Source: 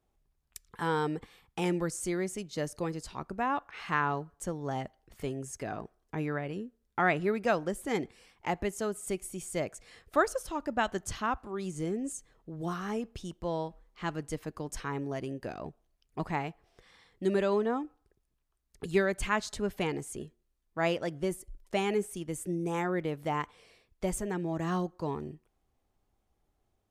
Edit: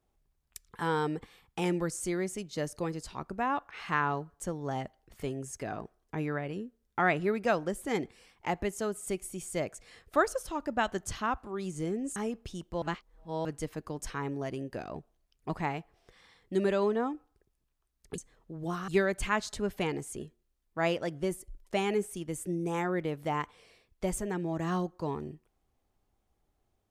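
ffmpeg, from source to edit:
ffmpeg -i in.wav -filter_complex "[0:a]asplit=6[link_01][link_02][link_03][link_04][link_05][link_06];[link_01]atrim=end=12.162[link_07];[link_02]atrim=start=12.858:end=13.522[link_08];[link_03]atrim=start=13.518:end=14.152,asetpts=PTS-STARTPTS,areverse[link_09];[link_04]atrim=start=14.148:end=18.882[link_10];[link_05]atrim=start=12.158:end=12.862[link_11];[link_06]atrim=start=18.878[link_12];[link_07][link_08]acrossfade=duration=0.004:curve1=hsin:curve2=hsin[link_13];[link_13][link_09]acrossfade=duration=0.004:curve1=hsin:curve2=hsin[link_14];[link_14][link_10]acrossfade=duration=0.004:curve1=hsin:curve2=hsin[link_15];[link_15][link_11]acrossfade=duration=0.004:curve1=hsin:curve2=hsin[link_16];[link_16][link_12]acrossfade=duration=0.004:curve1=hsin:curve2=hsin" out.wav

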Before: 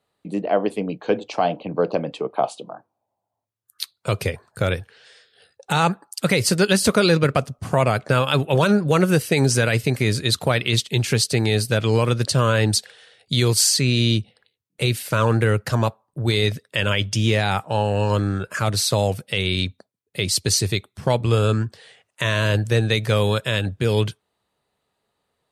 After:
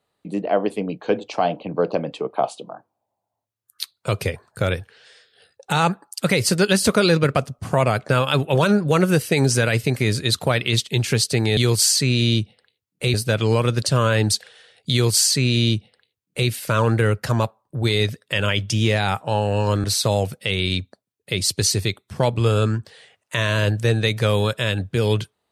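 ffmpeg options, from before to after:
ffmpeg -i in.wav -filter_complex "[0:a]asplit=4[link_01][link_02][link_03][link_04];[link_01]atrim=end=11.572[link_05];[link_02]atrim=start=13.348:end=14.922[link_06];[link_03]atrim=start=11.568:end=18.272[link_07];[link_04]atrim=start=18.708[link_08];[link_05][link_06]acrossfade=duration=0.004:curve1=hsin:curve2=hsin[link_09];[link_09][link_07]acrossfade=duration=0.004:curve1=hsin:curve2=hsin[link_10];[link_10][link_08]acrossfade=duration=0.004:curve1=hsin:curve2=hsin" out.wav

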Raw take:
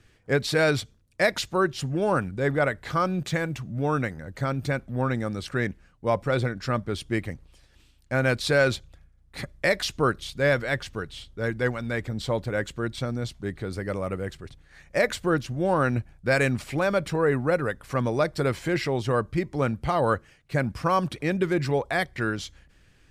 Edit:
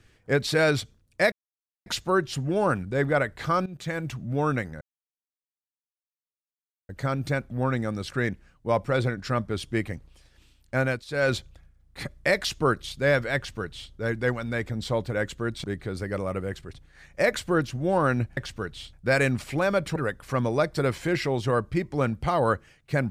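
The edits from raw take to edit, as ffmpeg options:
ffmpeg -i in.wav -filter_complex "[0:a]asplit=10[link_01][link_02][link_03][link_04][link_05][link_06][link_07][link_08][link_09][link_10];[link_01]atrim=end=1.32,asetpts=PTS-STARTPTS,afade=type=out:start_time=1.316:duration=0.004:curve=hsin,apad=pad_dur=0.54[link_11];[link_02]atrim=start=1.32:end=3.12,asetpts=PTS-STARTPTS,afade=type=in:duration=0.004:curve=hsin,afade=type=out:start_time=1.796:duration=0.004:curve=hsin:silence=0.141254[link_12];[link_03]atrim=start=3.12:end=4.27,asetpts=PTS-STARTPTS,afade=type=in:duration=0.45:silence=0.141254,afade=type=out:start_time=1.146:duration=0.004:curve=hsin,apad=pad_dur=2.08[link_13];[link_04]atrim=start=4.27:end=8.43,asetpts=PTS-STARTPTS,afade=type=in:duration=0.004:curve=hsin,afade=type=out:start_time=3.91:duration=0.25:silence=0.133352[link_14];[link_05]atrim=start=8.43:end=8.45,asetpts=PTS-STARTPTS,volume=-17.5dB[link_15];[link_06]atrim=start=8.45:end=13.022,asetpts=PTS-STARTPTS,afade=type=in:duration=0.25:silence=0.133352[link_16];[link_07]atrim=start=13.398:end=16.132[link_17];[link_08]atrim=start=10.738:end=11.302[link_18];[link_09]atrim=start=16.128:end=17.162[link_19];[link_10]atrim=start=17.568[link_20];[link_11][link_12][link_13][link_14][link_15][link_16]concat=n=6:v=0:a=1[link_21];[link_21][link_17]acrossfade=duration=0.004:curve1=hsin:curve2=hsin[link_22];[link_22][link_18]acrossfade=duration=0.004:curve1=hsin:curve2=hsin[link_23];[link_23][link_19]acrossfade=duration=0.004:curve1=hsin:curve2=hsin[link_24];[link_24][link_20]acrossfade=duration=0.004:curve1=hsin:curve2=hsin" out.wav

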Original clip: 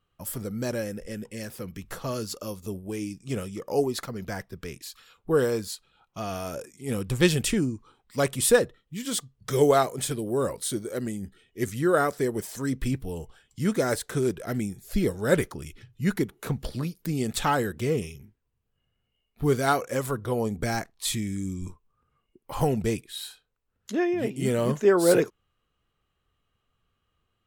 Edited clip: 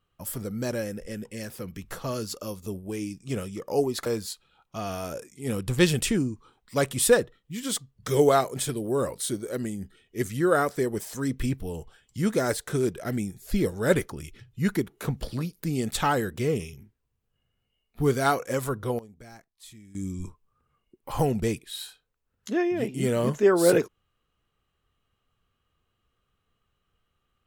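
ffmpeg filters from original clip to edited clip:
ffmpeg -i in.wav -filter_complex "[0:a]asplit=4[link_01][link_02][link_03][link_04];[link_01]atrim=end=4.062[link_05];[link_02]atrim=start=5.478:end=20.41,asetpts=PTS-STARTPTS,afade=type=out:start_time=14.642:duration=0.29:curve=log:silence=0.105925[link_06];[link_03]atrim=start=20.41:end=21.37,asetpts=PTS-STARTPTS,volume=-19.5dB[link_07];[link_04]atrim=start=21.37,asetpts=PTS-STARTPTS,afade=type=in:duration=0.29:curve=log:silence=0.105925[link_08];[link_06][link_07][link_08]concat=n=3:v=0:a=1[link_09];[link_05][link_09]acrossfade=duration=0.004:curve1=hsin:curve2=hsin" out.wav

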